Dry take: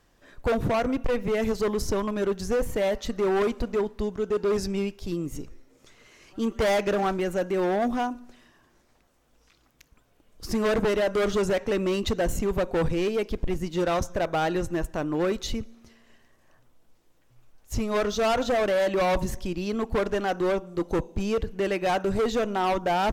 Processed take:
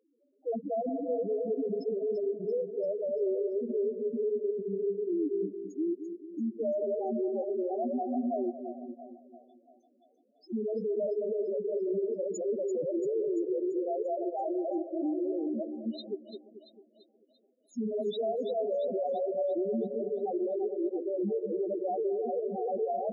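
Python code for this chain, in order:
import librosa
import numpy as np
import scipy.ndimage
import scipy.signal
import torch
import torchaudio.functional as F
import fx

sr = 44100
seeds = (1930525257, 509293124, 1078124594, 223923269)

y = fx.reverse_delay(x, sr, ms=425, wet_db=-3)
y = scipy.signal.sosfilt(scipy.signal.butter(4, 230.0, 'highpass', fs=sr, output='sos'), y)
y = fx.band_shelf(y, sr, hz=1500.0, db=-15.0, octaves=1.7)
y = fx.level_steps(y, sr, step_db=18)
y = fx.spec_topn(y, sr, count=2)
y = fx.echo_split(y, sr, split_hz=610.0, low_ms=219, high_ms=340, feedback_pct=52, wet_db=-9.0)
y = F.gain(torch.from_numpy(y), 8.0).numpy()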